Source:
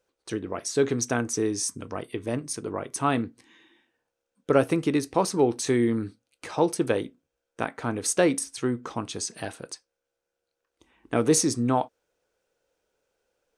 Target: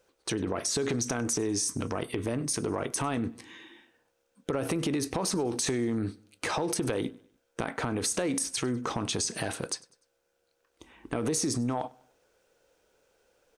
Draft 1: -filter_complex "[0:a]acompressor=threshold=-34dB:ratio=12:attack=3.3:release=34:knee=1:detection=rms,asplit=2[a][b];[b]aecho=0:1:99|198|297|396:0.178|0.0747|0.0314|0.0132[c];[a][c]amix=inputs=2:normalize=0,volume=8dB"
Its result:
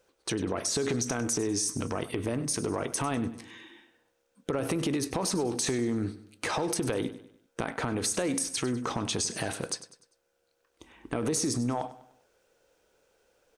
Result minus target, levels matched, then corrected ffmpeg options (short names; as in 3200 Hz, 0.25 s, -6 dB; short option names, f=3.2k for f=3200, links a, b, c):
echo-to-direct +8.5 dB
-filter_complex "[0:a]acompressor=threshold=-34dB:ratio=12:attack=3.3:release=34:knee=1:detection=rms,asplit=2[a][b];[b]aecho=0:1:99|198|297:0.0668|0.0281|0.0118[c];[a][c]amix=inputs=2:normalize=0,volume=8dB"